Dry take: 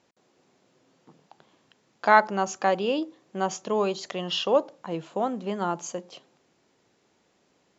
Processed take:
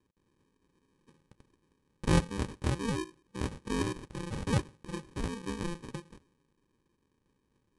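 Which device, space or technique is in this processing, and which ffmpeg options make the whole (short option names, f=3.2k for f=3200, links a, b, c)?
crushed at another speed: -af "asetrate=88200,aresample=44100,acrusher=samples=32:mix=1:aa=0.000001,asetrate=22050,aresample=44100,volume=-7dB"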